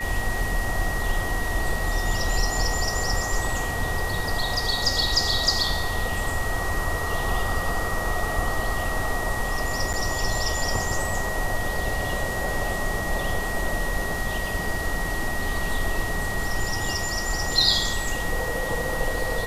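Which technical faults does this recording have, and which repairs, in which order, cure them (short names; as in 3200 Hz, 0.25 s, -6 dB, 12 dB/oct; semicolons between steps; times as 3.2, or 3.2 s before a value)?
tone 1900 Hz -30 dBFS
9.93–9.94 gap 7.2 ms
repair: notch 1900 Hz, Q 30; interpolate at 9.93, 7.2 ms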